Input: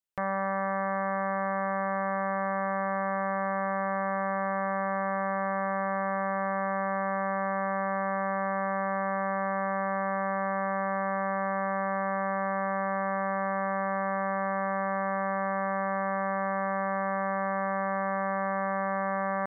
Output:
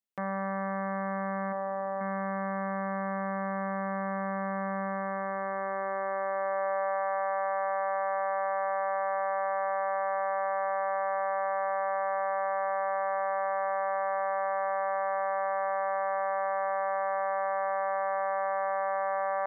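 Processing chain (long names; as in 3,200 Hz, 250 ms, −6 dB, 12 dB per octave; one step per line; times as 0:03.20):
0:01.52–0:02.01: spectral envelope exaggerated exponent 2
high-pass filter sweep 220 Hz → 650 Hz, 0:04.82–0:07.03
level −4.5 dB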